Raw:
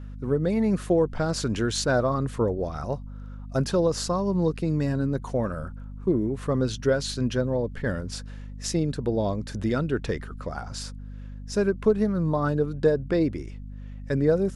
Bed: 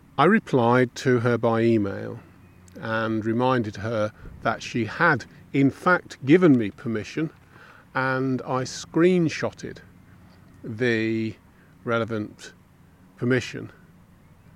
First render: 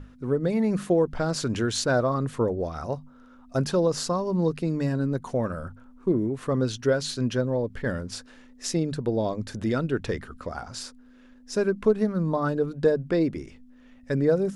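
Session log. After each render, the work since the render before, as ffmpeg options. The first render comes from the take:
-af "bandreject=f=50:t=h:w=6,bandreject=f=100:t=h:w=6,bandreject=f=150:t=h:w=6,bandreject=f=200:t=h:w=6"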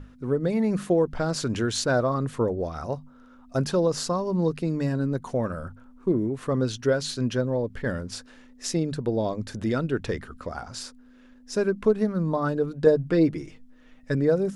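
-filter_complex "[0:a]asettb=1/sr,asplit=3[s0][s1][s2];[s0]atrim=end=12.864[s3];[s1]atrim=start=12.86:end=14.15,asetpts=PTS-STARTPTS,afade=t=in:d=0.004:c=qsin,afade=t=out:st=1.286:d=0.004:c=qsin,aecho=1:1:6.4:0.61,atrim=end_sample=56889[s4];[s2]atrim=start=14.146[s5];[s3][s4]acrossfade=d=0.004:c1=hsin:c2=qsin[s6];[s6][s5]acrossfade=d=0.004:c1=qsin:c2=hsin"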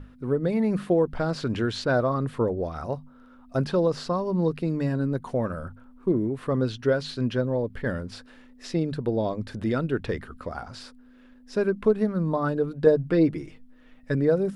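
-filter_complex "[0:a]acrossover=split=5800[s0][s1];[s1]acompressor=threshold=0.00224:ratio=4:attack=1:release=60[s2];[s0][s2]amix=inputs=2:normalize=0,equalizer=f=6400:w=1.9:g=-8"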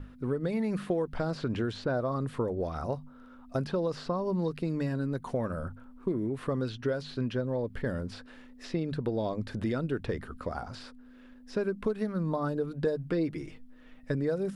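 -filter_complex "[0:a]acrossover=split=1200|4000[s0][s1][s2];[s0]acompressor=threshold=0.0398:ratio=4[s3];[s1]acompressor=threshold=0.00501:ratio=4[s4];[s2]acompressor=threshold=0.00178:ratio=4[s5];[s3][s4][s5]amix=inputs=3:normalize=0"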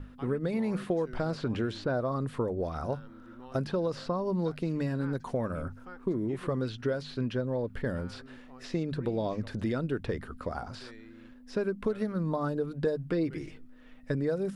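-filter_complex "[1:a]volume=0.0376[s0];[0:a][s0]amix=inputs=2:normalize=0"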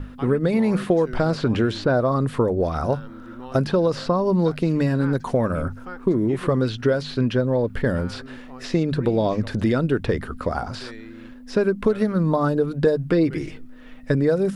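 -af "volume=3.35"

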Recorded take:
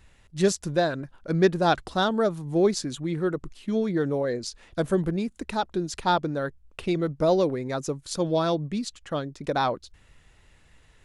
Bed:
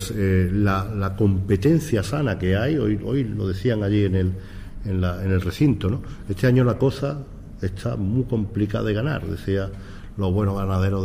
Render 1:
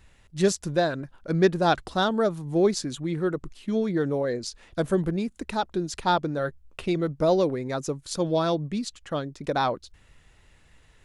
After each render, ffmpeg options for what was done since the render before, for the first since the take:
-filter_complex "[0:a]asettb=1/sr,asplit=3[s0][s1][s2];[s0]atrim=end=6.374[s3];[s1]atrim=start=6.37:end=6.83,asetpts=PTS-STARTPTS,afade=t=in:d=0.004:c=qsin,afade=t=out:st=0.456:d=0.004:c=qsin,asplit=2[s4][s5];[s5]adelay=13,volume=0.398[s6];[s4][s6]amix=inputs=2:normalize=0,atrim=end_sample=20286[s7];[s2]atrim=start=6.826[s8];[s3][s7]acrossfade=d=0.004:c1=hsin:c2=qsin[s9];[s9][s8]acrossfade=d=0.004:c1=qsin:c2=hsin"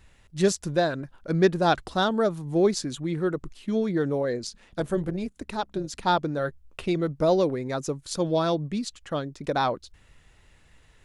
-filter_complex "[0:a]asettb=1/sr,asplit=3[s0][s1][s2];[s0]atrim=end=4.474[s3];[s1]atrim=start=4.47:end=6.03,asetpts=PTS-STARTPTS,afade=t=in:d=0.004:c=qsin,afade=t=out:st=1.556:d=0.004:c=qsin,tremolo=f=200:d=0.571[s4];[s2]atrim=start=6.026[s5];[s3][s4]acrossfade=d=0.004:c1=hsin:c2=qsin[s6];[s6][s5]acrossfade=d=0.004:c1=qsin:c2=hsin"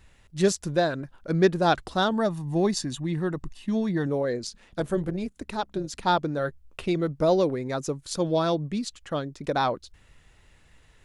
-filter_complex "[0:a]asettb=1/sr,asplit=3[s0][s1][s2];[s0]atrim=end=2.124[s3];[s1]atrim=start=2.12:end=4.07,asetpts=PTS-STARTPTS,afade=t=in:d=0.004:c=qsin,afade=t=out:st=1.946:d=0.004:c=qsin,aecho=1:1:1.1:0.49,atrim=end_sample=85995[s4];[s2]atrim=start=4.066[s5];[s3][s4]acrossfade=d=0.004:c1=hsin:c2=qsin[s6];[s6][s5]acrossfade=d=0.004:c1=qsin:c2=hsin"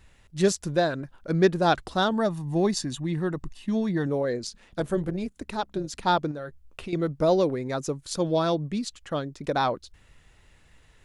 -filter_complex "[0:a]asettb=1/sr,asplit=3[s0][s1][s2];[s0]atrim=end=6.314[s3];[s1]atrim=start=6.31:end=6.93,asetpts=PTS-STARTPTS,afade=t=in:d=0.004:c=qsin,afade=t=out:st=0.616:d=0.004:c=qsin,acompressor=threshold=0.0224:ratio=4:attack=3.2:release=140:knee=1:detection=peak[s4];[s2]atrim=start=6.926[s5];[s3][s4]acrossfade=d=0.004:c1=hsin:c2=qsin[s6];[s6][s5]acrossfade=d=0.004:c1=qsin:c2=hsin"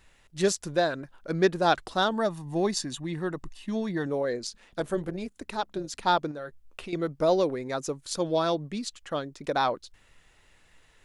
-af "equalizer=f=70:w=0.33:g=-9"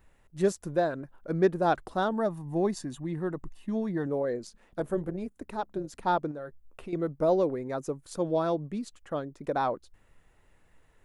-af "equalizer=f=4400:w=0.47:g=-14"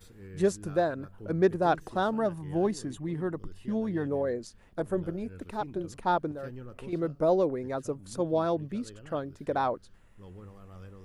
-filter_complex "[1:a]volume=0.0473[s0];[0:a][s0]amix=inputs=2:normalize=0"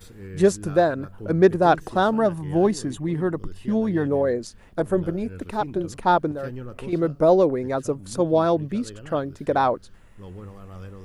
-af "volume=2.51"

